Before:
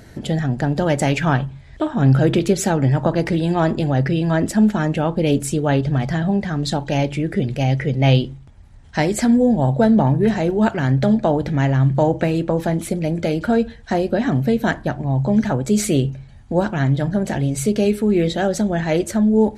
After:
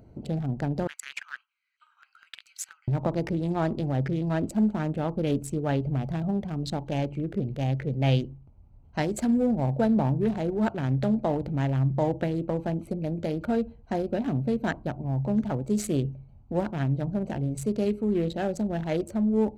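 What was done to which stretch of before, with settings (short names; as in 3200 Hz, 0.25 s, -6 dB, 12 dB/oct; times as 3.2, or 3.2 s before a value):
0.87–2.88 steep high-pass 1400 Hz 48 dB/oct
whole clip: Wiener smoothing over 25 samples; high shelf 10000 Hz +4 dB; gain -8.5 dB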